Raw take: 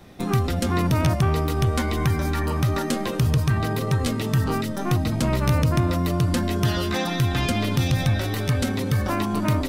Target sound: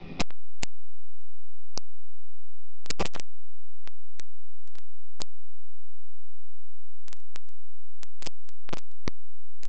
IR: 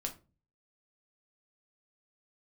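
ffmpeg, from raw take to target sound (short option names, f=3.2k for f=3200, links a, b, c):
-filter_complex "[0:a]acrossover=split=440|3900[a][b][c];[c]acrusher=bits=7:mix=0:aa=0.000001[d];[a][b][d]amix=inputs=3:normalize=0,asplit=2[e][f];[f]adelay=12,volume=-11.5dB[g];[e][g]amix=inputs=2:normalize=0,aeval=exprs='0.376*(cos(1*acos(clip(val(0)/0.376,-1,1)))-cos(1*PI/2))+0.0075*(cos(2*acos(clip(val(0)/0.376,-1,1)))-cos(2*PI/2))+0.188*(cos(4*acos(clip(val(0)/0.376,-1,1)))-cos(4*PI/2))+0.106*(cos(8*acos(clip(val(0)/0.376,-1,1)))-cos(8*PI/2))':c=same,equalizer=f=100:t=o:w=0.33:g=-4,equalizer=f=160:t=o:w=0.33:g=4,equalizer=f=630:t=o:w=0.33:g=-5,equalizer=f=1.6k:t=o:w=0.33:g=-11,equalizer=f=2.5k:t=o:w=0.33:g=9,equalizer=f=5k:t=o:w=0.33:g=9[h];[1:a]atrim=start_sample=2205[i];[h][i]afir=irnorm=-1:irlink=0,acrossover=split=240|3000[j][k][l];[k]acompressor=threshold=-23dB:ratio=6[m];[j][m][l]amix=inputs=3:normalize=0,aresample=16000,volume=19.5dB,asoftclip=hard,volume=-19.5dB,aresample=44100,volume=3dB"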